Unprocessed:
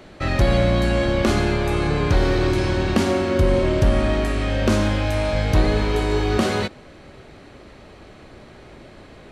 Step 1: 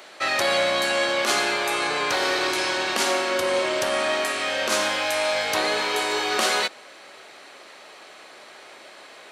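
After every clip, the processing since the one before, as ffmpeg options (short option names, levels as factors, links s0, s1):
-af "highpass=700,highshelf=f=4200:g=7,alimiter=level_in=3.35:limit=0.891:release=50:level=0:latency=1,volume=0.447"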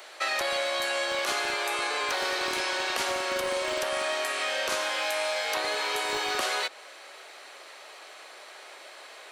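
-filter_complex "[0:a]highshelf=f=10000:g=5.5,acrossover=split=220|4400[s0][s1][s2];[s0]acompressor=threshold=0.00398:ratio=4[s3];[s1]acompressor=threshold=0.0562:ratio=4[s4];[s2]acompressor=threshold=0.0141:ratio=4[s5];[s3][s4][s5]amix=inputs=3:normalize=0,acrossover=split=330|1300|4200[s6][s7][s8][s9];[s6]acrusher=bits=5:mix=0:aa=0.000001[s10];[s10][s7][s8][s9]amix=inputs=4:normalize=0,volume=0.841"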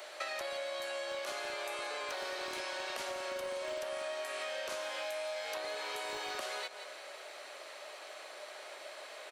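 -af "equalizer=f=600:w=6.8:g=9,aecho=1:1:168|336|504:0.15|0.0479|0.0153,acompressor=threshold=0.02:ratio=6,volume=0.708"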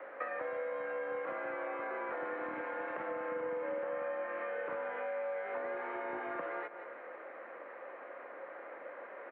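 -af "highpass=f=160:t=q:w=0.5412,highpass=f=160:t=q:w=1.307,lowpass=f=2000:t=q:w=0.5176,lowpass=f=2000:t=q:w=0.7071,lowpass=f=2000:t=q:w=1.932,afreqshift=-60,volume=1.26"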